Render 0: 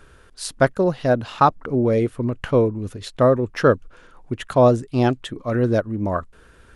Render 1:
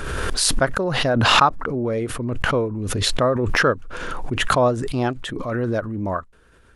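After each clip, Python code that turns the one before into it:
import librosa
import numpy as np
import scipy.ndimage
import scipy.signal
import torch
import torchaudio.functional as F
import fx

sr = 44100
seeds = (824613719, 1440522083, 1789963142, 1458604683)

y = fx.dynamic_eq(x, sr, hz=1300.0, q=0.84, threshold_db=-31.0, ratio=4.0, max_db=6)
y = fx.pre_swell(y, sr, db_per_s=22.0)
y = F.gain(torch.from_numpy(y), -6.0).numpy()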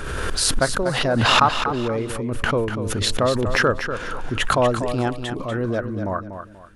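y = fx.echo_feedback(x, sr, ms=242, feedback_pct=30, wet_db=-9)
y = F.gain(torch.from_numpy(y), -1.0).numpy()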